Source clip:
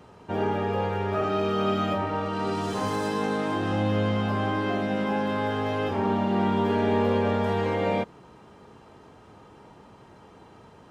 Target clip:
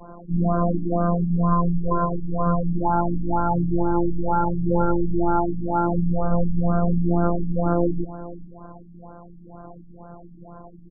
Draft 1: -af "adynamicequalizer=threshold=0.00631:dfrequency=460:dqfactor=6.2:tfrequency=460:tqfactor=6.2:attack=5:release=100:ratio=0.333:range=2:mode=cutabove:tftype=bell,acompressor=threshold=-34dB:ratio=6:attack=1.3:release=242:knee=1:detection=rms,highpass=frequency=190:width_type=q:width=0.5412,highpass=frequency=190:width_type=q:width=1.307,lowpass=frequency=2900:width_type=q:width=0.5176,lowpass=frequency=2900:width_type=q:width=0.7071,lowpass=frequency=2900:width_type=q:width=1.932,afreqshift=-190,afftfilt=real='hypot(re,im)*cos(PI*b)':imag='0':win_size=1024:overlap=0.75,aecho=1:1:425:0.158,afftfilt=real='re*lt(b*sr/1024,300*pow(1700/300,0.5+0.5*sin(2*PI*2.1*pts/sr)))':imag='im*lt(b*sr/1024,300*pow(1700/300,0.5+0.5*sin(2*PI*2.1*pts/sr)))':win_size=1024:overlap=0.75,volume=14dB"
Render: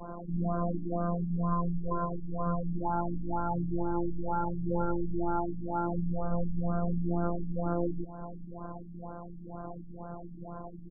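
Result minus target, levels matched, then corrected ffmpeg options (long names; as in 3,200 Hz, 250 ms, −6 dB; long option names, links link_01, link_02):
downward compressor: peak gain reduction +10 dB
-af "adynamicequalizer=threshold=0.00631:dfrequency=460:dqfactor=6.2:tfrequency=460:tqfactor=6.2:attack=5:release=100:ratio=0.333:range=2:mode=cutabove:tftype=bell,acompressor=threshold=-22dB:ratio=6:attack=1.3:release=242:knee=1:detection=rms,highpass=frequency=190:width_type=q:width=0.5412,highpass=frequency=190:width_type=q:width=1.307,lowpass=frequency=2900:width_type=q:width=0.5176,lowpass=frequency=2900:width_type=q:width=0.7071,lowpass=frequency=2900:width_type=q:width=1.932,afreqshift=-190,afftfilt=real='hypot(re,im)*cos(PI*b)':imag='0':win_size=1024:overlap=0.75,aecho=1:1:425:0.158,afftfilt=real='re*lt(b*sr/1024,300*pow(1700/300,0.5+0.5*sin(2*PI*2.1*pts/sr)))':imag='im*lt(b*sr/1024,300*pow(1700/300,0.5+0.5*sin(2*PI*2.1*pts/sr)))':win_size=1024:overlap=0.75,volume=14dB"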